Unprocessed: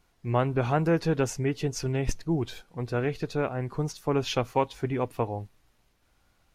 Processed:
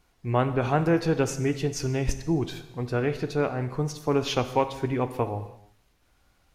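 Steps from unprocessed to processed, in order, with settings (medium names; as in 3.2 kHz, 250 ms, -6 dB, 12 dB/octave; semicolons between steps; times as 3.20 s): gated-style reverb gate 360 ms falling, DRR 9.5 dB; trim +1.5 dB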